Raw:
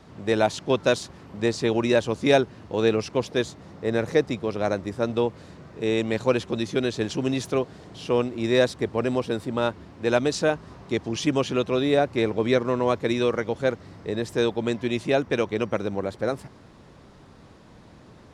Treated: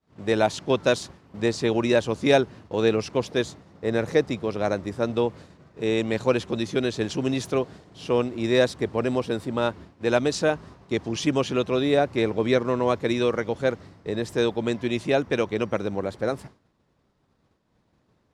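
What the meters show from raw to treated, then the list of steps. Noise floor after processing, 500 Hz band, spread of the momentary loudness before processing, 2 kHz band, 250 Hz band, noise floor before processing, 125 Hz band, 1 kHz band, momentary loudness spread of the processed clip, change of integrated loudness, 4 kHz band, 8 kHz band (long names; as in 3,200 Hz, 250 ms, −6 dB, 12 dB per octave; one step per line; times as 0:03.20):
−68 dBFS, 0.0 dB, 8 LU, 0.0 dB, 0.0 dB, −50 dBFS, 0.0 dB, 0.0 dB, 8 LU, 0.0 dB, 0.0 dB, 0.0 dB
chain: downward expander −37 dBFS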